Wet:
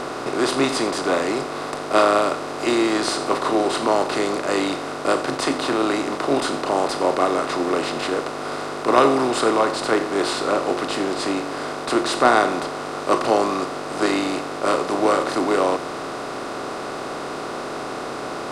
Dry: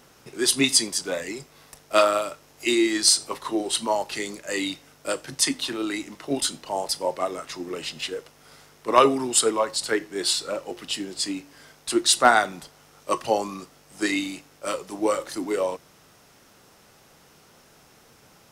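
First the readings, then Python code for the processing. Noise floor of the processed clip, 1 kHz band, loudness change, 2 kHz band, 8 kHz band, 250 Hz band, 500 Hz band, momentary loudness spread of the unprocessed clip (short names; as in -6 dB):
-30 dBFS, +6.0 dB, +2.5 dB, +3.5 dB, -7.0 dB, +6.0 dB, +6.0 dB, 16 LU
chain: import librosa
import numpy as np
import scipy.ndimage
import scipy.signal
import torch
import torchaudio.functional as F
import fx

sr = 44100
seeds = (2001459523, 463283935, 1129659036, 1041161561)

y = fx.bin_compress(x, sr, power=0.4)
y = fx.lowpass(y, sr, hz=1400.0, slope=6)
y = F.gain(torch.from_numpy(y), -1.0).numpy()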